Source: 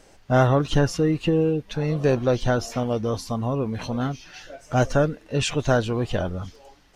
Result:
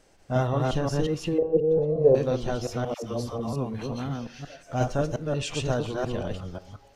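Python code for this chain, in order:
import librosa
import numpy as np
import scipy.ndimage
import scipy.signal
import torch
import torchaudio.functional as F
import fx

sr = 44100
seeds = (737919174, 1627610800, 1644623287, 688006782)

y = fx.reverse_delay(x, sr, ms=178, wet_db=-1)
y = fx.curve_eq(y, sr, hz=(320.0, 480.0, 2100.0), db=(0, 13, -21), at=(1.38, 2.15))
y = fx.rev_plate(y, sr, seeds[0], rt60_s=0.63, hf_ratio=0.6, predelay_ms=0, drr_db=14.5)
y = fx.dynamic_eq(y, sr, hz=1600.0, q=2.1, threshold_db=-37.0, ratio=4.0, max_db=-5)
y = fx.dispersion(y, sr, late='lows', ms=99.0, hz=540.0, at=(2.94, 3.53))
y = y * librosa.db_to_amplitude(-7.5)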